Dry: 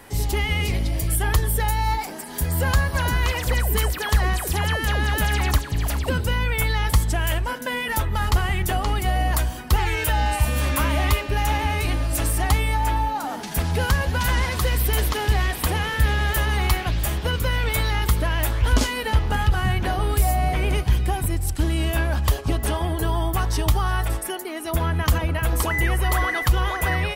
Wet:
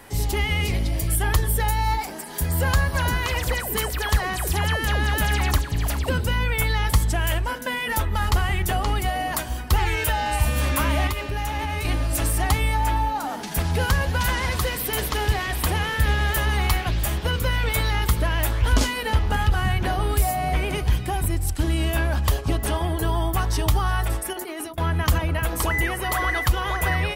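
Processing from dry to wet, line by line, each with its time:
11.07–11.85 compressor 3:1, threshold -23 dBFS
24.33–24.78 negative-ratio compressor -35 dBFS
whole clip: de-hum 61.55 Hz, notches 8

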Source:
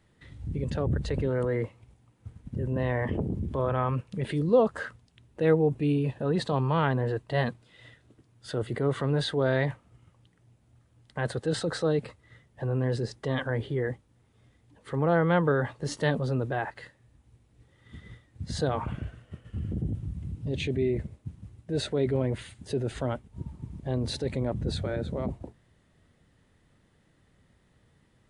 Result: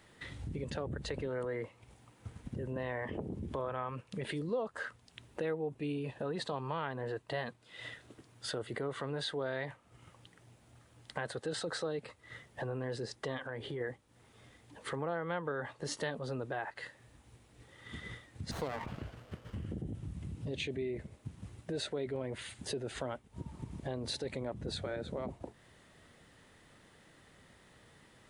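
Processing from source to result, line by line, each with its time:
13.37–13.81 compressor 2.5:1, threshold -34 dBFS
18.51–19.66 running maximum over 17 samples
whole clip: low shelf 270 Hz -12 dB; compressor 3:1, threshold -49 dBFS; gain +9 dB

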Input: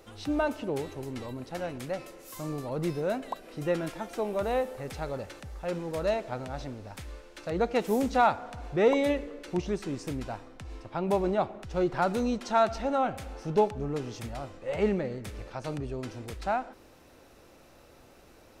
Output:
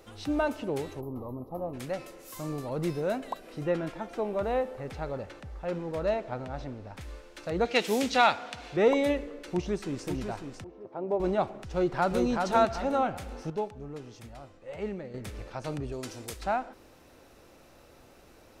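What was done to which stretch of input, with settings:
1.01–1.74 spectral gain 1300–11000 Hz -28 dB
3.61–7.01 LPF 2700 Hz 6 dB/oct
7.65–8.77 weighting filter D
9.35–10.06 echo throw 0.55 s, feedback 45%, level -7.5 dB
10.64–11.2 band-pass 470 Hz, Q 1.4
11.72–12.27 echo throw 0.38 s, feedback 35%, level -3.5 dB
13.5–15.14 gain -8.5 dB
15.92–16.42 tone controls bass -5 dB, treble +10 dB

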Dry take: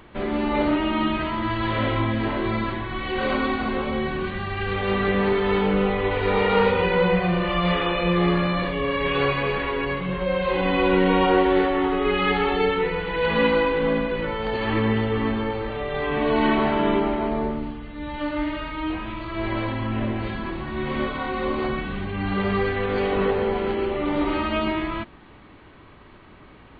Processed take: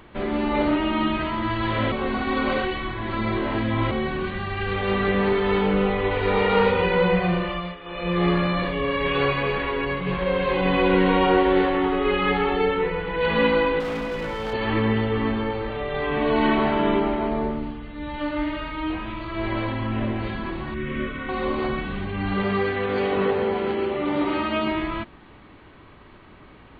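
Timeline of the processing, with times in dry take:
1.92–3.91 reverse
7.32–8.27 dip -18 dB, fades 0.44 s
9.47–10.59 echo throw 0.59 s, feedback 60%, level -7 dB
12.15–13.19 LPF 3800 Hz -> 2300 Hz 6 dB/oct
13.8–14.53 overloaded stage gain 25 dB
20.74–21.29 fixed phaser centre 2000 Hz, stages 4
22.43–24.72 HPF 100 Hz

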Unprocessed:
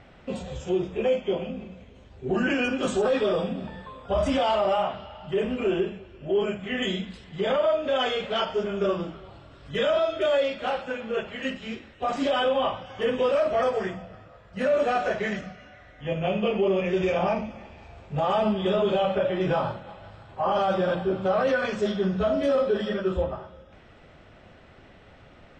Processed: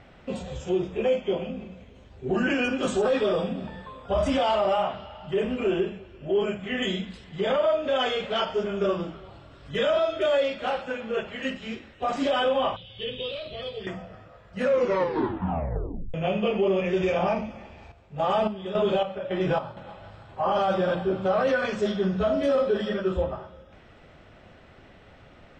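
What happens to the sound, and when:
12.76–13.87 EQ curve 140 Hz 0 dB, 270 Hz -15 dB, 420 Hz -7 dB, 790 Hz -20 dB, 1500 Hz -19 dB, 3900 Hz +12 dB, 5900 Hz -21 dB, 11000 Hz -13 dB
14.61 tape stop 1.53 s
17.64–19.77 chopper 1.8 Hz, depth 65%

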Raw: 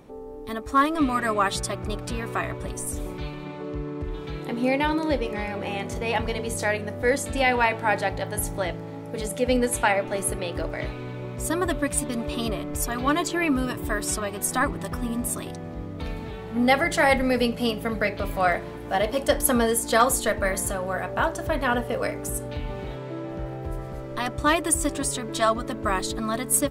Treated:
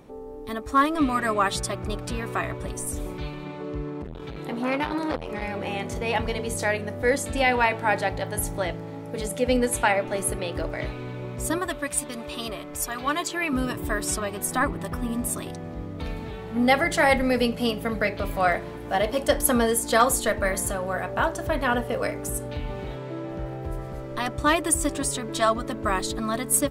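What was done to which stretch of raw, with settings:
3.9–5.42 core saturation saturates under 1000 Hz
11.58–13.53 low shelf 430 Hz -10.5 dB
14.41–15.09 bell 6200 Hz -4 dB 1.4 oct

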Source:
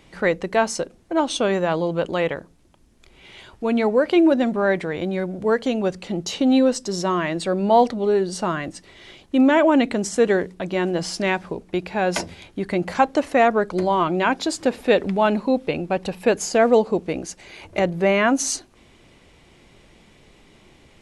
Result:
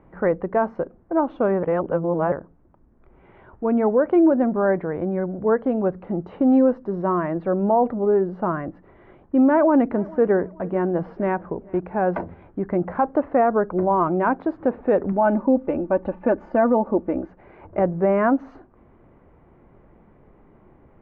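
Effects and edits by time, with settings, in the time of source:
1.63–2.32 reverse
9.48–11.8 feedback echo 0.44 s, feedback 37%, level -23.5 dB
15.12–17.28 comb 3.4 ms
whole clip: LPF 1400 Hz 24 dB/oct; maximiser +9 dB; gain -8.5 dB

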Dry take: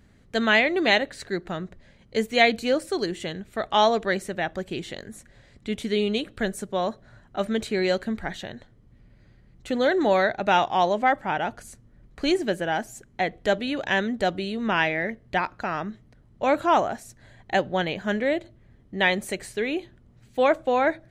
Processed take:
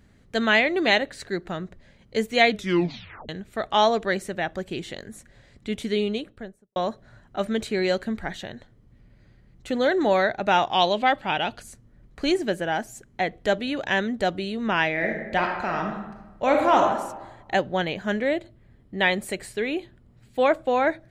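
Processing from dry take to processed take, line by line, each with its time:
2.5 tape stop 0.79 s
5.89–6.76 studio fade out
10.73–11.61 band shelf 3400 Hz +11 dB 1.1 oct
14.91–16.81 reverb throw, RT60 1.1 s, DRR 1.5 dB
18.28–20.69 notch 6100 Hz, Q 7.9

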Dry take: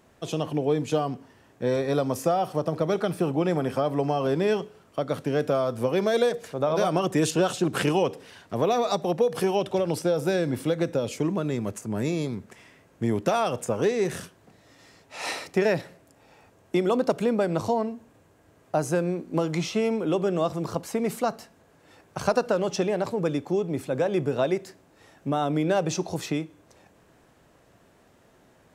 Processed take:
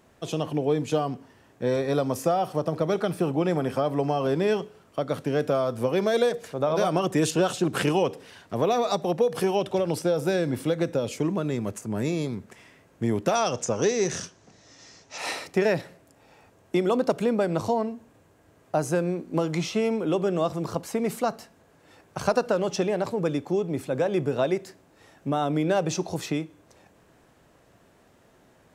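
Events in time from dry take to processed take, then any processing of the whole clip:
13.35–15.18 synth low-pass 6100 Hz, resonance Q 4.4

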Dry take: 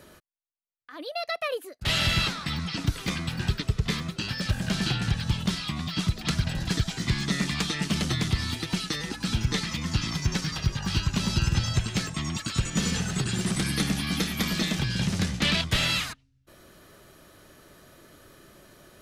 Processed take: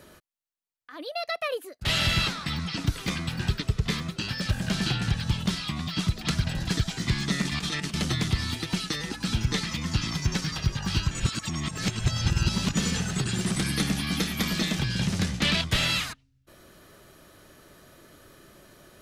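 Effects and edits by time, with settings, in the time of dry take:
7.42–7.94 negative-ratio compressor -30 dBFS, ratio -0.5
11.11–12.74 reverse

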